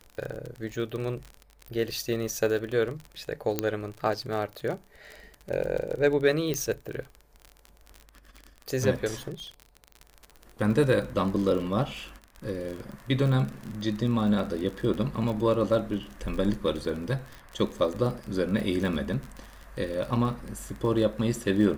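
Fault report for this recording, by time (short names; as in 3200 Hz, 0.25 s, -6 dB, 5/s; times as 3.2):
crackle 33/s -32 dBFS
3.59 pop -10 dBFS
6.54 pop -15 dBFS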